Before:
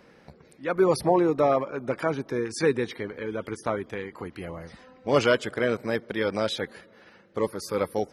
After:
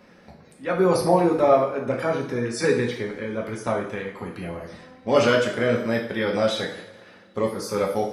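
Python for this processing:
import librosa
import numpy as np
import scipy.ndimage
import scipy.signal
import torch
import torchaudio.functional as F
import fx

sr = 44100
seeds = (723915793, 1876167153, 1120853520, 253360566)

y = fx.rev_double_slope(x, sr, seeds[0], early_s=0.55, late_s=1.9, knee_db=-18, drr_db=-1.0)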